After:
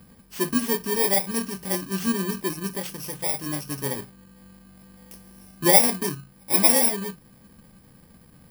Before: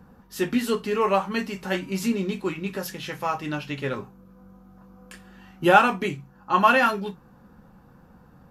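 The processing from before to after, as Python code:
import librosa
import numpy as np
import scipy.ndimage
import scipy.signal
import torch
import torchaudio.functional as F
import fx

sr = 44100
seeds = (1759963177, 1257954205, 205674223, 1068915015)

y = fx.bit_reversed(x, sr, seeds[0], block=32)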